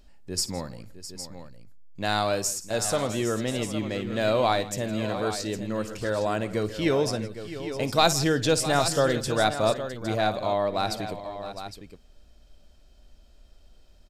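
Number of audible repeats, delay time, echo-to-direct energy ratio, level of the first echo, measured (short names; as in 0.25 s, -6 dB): 4, 56 ms, -8.0 dB, -16.0 dB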